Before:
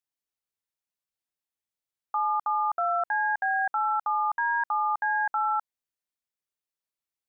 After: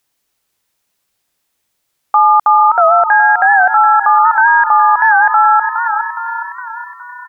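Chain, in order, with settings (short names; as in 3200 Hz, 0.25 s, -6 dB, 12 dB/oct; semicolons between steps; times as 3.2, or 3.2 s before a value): on a send: frequency-shifting echo 0.414 s, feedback 55%, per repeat +31 Hz, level -13.5 dB; on the sum: maximiser +24 dB; record warp 78 rpm, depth 100 cents; gain -1 dB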